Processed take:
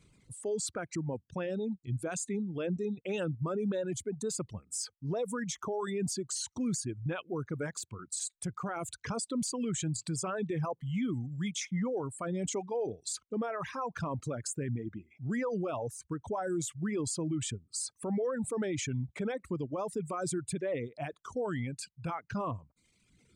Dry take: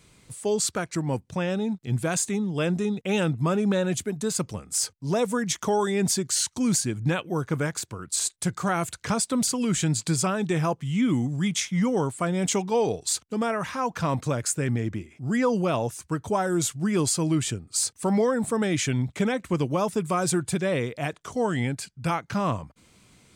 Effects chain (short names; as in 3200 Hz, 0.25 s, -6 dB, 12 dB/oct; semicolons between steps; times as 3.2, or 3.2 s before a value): formant sharpening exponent 1.5; reverb removal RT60 1 s; limiter -20.5 dBFS, peak gain reduction 7.5 dB; gain -6 dB